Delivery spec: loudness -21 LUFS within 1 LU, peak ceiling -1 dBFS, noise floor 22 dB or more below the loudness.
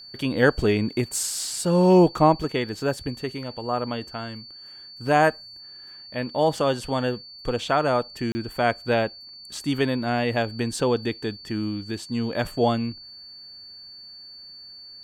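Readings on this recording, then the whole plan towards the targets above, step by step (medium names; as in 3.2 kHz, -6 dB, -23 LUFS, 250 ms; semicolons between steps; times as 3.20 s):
dropouts 1; longest dropout 30 ms; steady tone 4.5 kHz; tone level -41 dBFS; loudness -24.0 LUFS; peak level -5.0 dBFS; loudness target -21.0 LUFS
-> interpolate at 8.32 s, 30 ms; band-stop 4.5 kHz, Q 30; trim +3 dB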